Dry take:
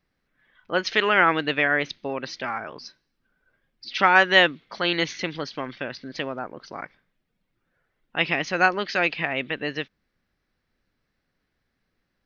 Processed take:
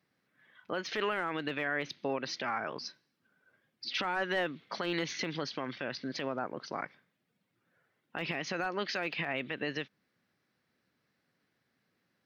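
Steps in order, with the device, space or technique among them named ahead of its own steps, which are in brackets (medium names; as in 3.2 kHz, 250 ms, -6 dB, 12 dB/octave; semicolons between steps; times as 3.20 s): podcast mastering chain (high-pass 110 Hz 24 dB/octave; de-esser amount 80%; compression 3:1, threshold -28 dBFS, peak gain reduction 10 dB; peak limiter -22 dBFS, peak gain reduction 8 dB; MP3 96 kbps 44.1 kHz)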